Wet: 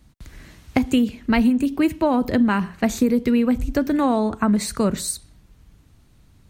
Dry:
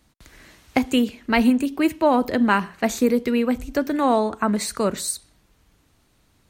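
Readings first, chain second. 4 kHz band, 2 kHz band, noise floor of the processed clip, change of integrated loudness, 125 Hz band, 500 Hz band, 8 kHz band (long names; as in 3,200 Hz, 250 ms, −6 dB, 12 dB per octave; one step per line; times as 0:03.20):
−2.0 dB, −2.5 dB, −54 dBFS, +1.0 dB, +5.5 dB, −2.0 dB, −0.5 dB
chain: bass and treble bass +11 dB, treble 0 dB
downward compressor, threshold −14 dBFS, peak gain reduction 7.5 dB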